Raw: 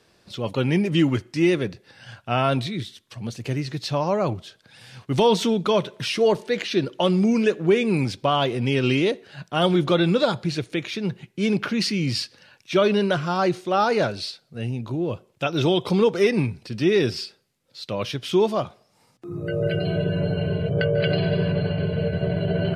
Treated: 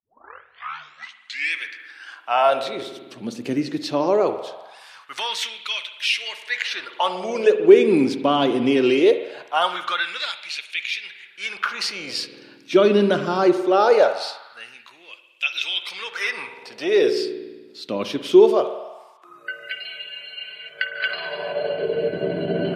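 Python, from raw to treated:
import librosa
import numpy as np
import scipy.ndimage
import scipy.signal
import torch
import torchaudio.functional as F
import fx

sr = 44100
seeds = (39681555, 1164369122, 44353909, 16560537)

y = fx.tape_start_head(x, sr, length_s=1.66)
y = fx.rev_spring(y, sr, rt60_s=1.4, pass_ms=(49,), chirp_ms=25, drr_db=9.5)
y = fx.filter_lfo_highpass(y, sr, shape='sine', hz=0.21, low_hz=260.0, high_hz=2500.0, q=2.7)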